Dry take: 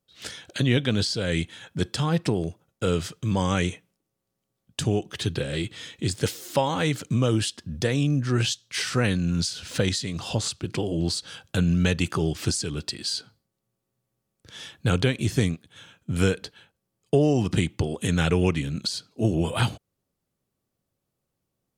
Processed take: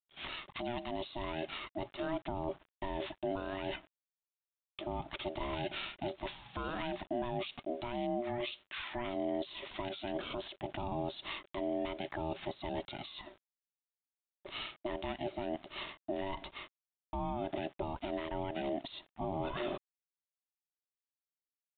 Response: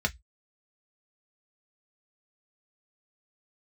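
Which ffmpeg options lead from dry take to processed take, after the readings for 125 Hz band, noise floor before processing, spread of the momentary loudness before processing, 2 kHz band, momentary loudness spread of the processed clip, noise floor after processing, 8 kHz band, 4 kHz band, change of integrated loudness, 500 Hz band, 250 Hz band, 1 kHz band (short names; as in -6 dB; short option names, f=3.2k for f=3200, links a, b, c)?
-23.0 dB, -81 dBFS, 8 LU, -12.5 dB, 7 LU, under -85 dBFS, under -40 dB, -14.0 dB, -14.0 dB, -10.0 dB, -14.5 dB, -5.5 dB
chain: -af "agate=range=-16dB:threshold=-54dB:ratio=16:detection=peak,areverse,acompressor=threshold=-36dB:ratio=6,areverse,alimiter=level_in=10.5dB:limit=-24dB:level=0:latency=1:release=142,volume=-10.5dB,aeval=exprs='val(0)*sin(2*PI*480*n/s)':c=same,acrusher=bits=10:mix=0:aa=0.000001,aresample=8000,aresample=44100,volume=9dB"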